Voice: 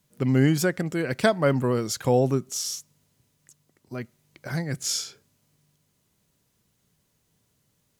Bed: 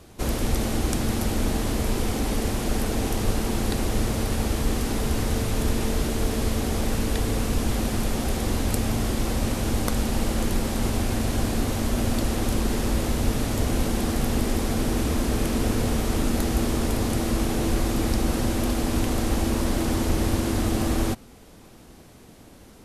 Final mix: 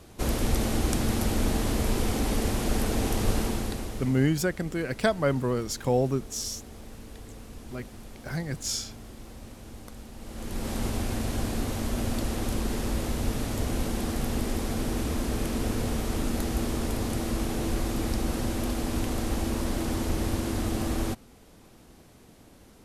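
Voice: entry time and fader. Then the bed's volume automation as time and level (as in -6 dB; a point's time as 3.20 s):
3.80 s, -3.5 dB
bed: 3.41 s -1.5 dB
4.39 s -19.5 dB
10.17 s -19.5 dB
10.70 s -5 dB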